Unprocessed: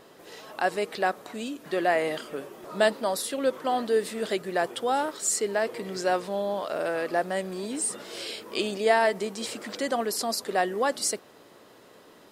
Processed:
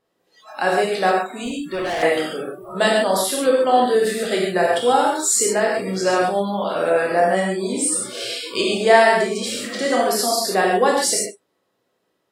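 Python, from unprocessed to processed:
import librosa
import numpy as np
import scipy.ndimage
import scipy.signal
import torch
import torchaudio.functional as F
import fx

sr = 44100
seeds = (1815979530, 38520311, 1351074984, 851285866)

p1 = fx.rev_gated(x, sr, seeds[0], gate_ms=170, shape='flat', drr_db=-3.0)
p2 = fx.overload_stage(p1, sr, gain_db=26.5, at=(1.43, 2.03))
p3 = p2 + fx.echo_single(p2, sr, ms=95, db=-19.5, dry=0)
p4 = fx.noise_reduce_blind(p3, sr, reduce_db=27)
y = p4 * librosa.db_to_amplitude(4.5)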